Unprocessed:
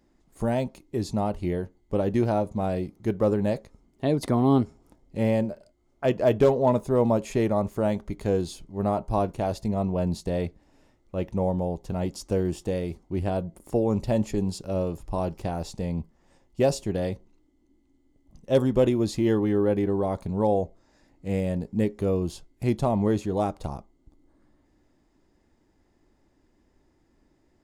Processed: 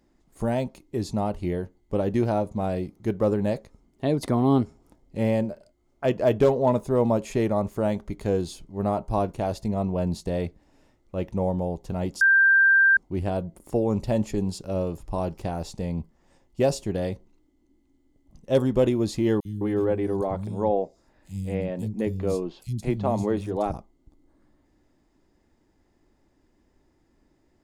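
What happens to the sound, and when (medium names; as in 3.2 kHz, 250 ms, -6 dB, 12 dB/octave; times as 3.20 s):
12.21–12.97 s: bleep 1.58 kHz -14 dBFS
19.40–23.74 s: three bands offset in time highs, lows, mids 50/210 ms, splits 190/3900 Hz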